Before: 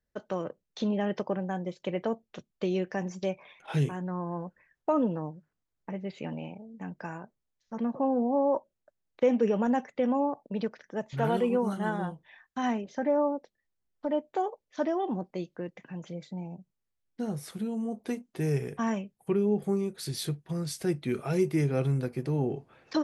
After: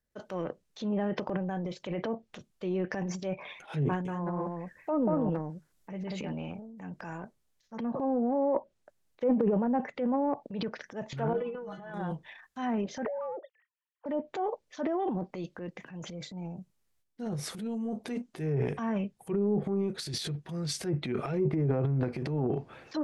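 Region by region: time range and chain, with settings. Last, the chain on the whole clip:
0:03.86–0:06.29: high-shelf EQ 4,300 Hz +6.5 dB + single-tap delay 189 ms −3.5 dB
0:11.33–0:11.94: Gaussian smoothing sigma 2 samples + stiff-string resonator 150 Hz, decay 0.24 s, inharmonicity 0.008
0:13.05–0:14.06: three sine waves on the formant tracks + high-pass filter 290 Hz + downward compressor 12 to 1, threshold −31 dBFS
whole clip: treble cut that deepens with the level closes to 940 Hz, closed at −22 dBFS; high-shelf EQ 6,900 Hz +4 dB; transient designer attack −6 dB, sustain +10 dB; level −1.5 dB

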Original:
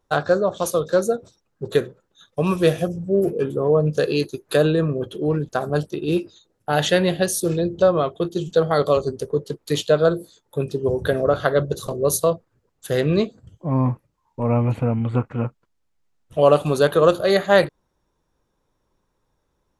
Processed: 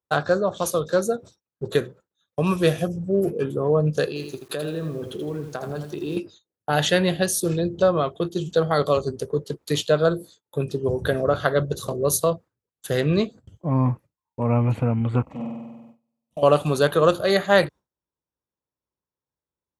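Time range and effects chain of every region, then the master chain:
0:04.08–0:06.17: downward compressor, threshold −26 dBFS + feedback echo at a low word length 81 ms, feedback 35%, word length 8 bits, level −7 dB
0:15.22–0:16.43: downward compressor 8 to 1, threshold −24 dBFS + phaser with its sweep stopped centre 400 Hz, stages 6 + flutter between parallel walls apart 8.2 metres, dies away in 1.4 s
whole clip: high-pass filter 55 Hz 24 dB per octave; noise gate with hold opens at −37 dBFS; dynamic equaliser 460 Hz, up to −3 dB, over −25 dBFS, Q 0.82

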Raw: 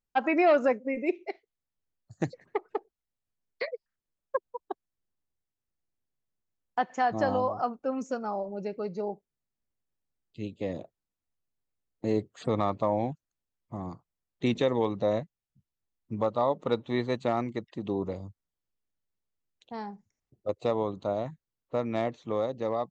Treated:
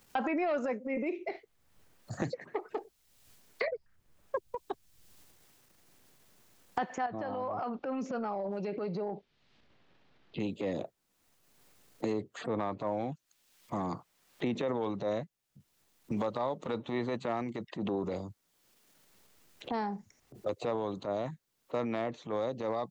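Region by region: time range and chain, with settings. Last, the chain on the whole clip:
0:07.06–0:10.40: low-pass filter 3,900 Hz 24 dB per octave + downward compressor 4 to 1, threshold −39 dBFS
0:12.13–0:14.54: high-shelf EQ 2,800 Hz −11 dB + one half of a high-frequency compander encoder only
whole clip: transient designer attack −10 dB, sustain +6 dB; low-shelf EQ 100 Hz −11.5 dB; multiband upward and downward compressor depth 100%; level −1.5 dB

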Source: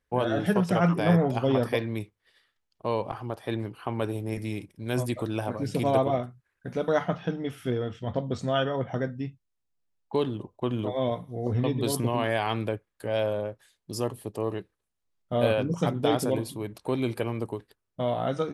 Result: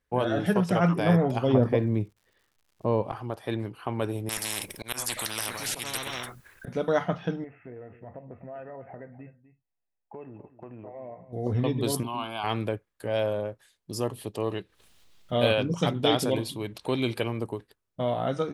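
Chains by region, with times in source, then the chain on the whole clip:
0:01.53–0:03.01: low-pass filter 1,100 Hz 6 dB per octave + low-shelf EQ 450 Hz +7.5 dB + surface crackle 200 per second −54 dBFS
0:04.29–0:06.68: high-shelf EQ 11,000 Hz +10.5 dB + volume swells 324 ms + every bin compressed towards the loudest bin 10 to 1
0:07.44–0:11.33: Chebyshev low-pass with heavy ripple 2,700 Hz, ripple 9 dB + downward compressor 3 to 1, threshold −41 dBFS + single-tap delay 250 ms −14.5 dB
0:12.03–0:12.44: Butterworth band-reject 1,800 Hz, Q 4.5 + parametric band 98 Hz −14 dB 1.6 octaves + phaser with its sweep stopped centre 1,900 Hz, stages 6
0:14.13–0:17.28: upward compression, threshold −39 dBFS + parametric band 3,400 Hz +8.5 dB 1.3 octaves
whole clip: no processing

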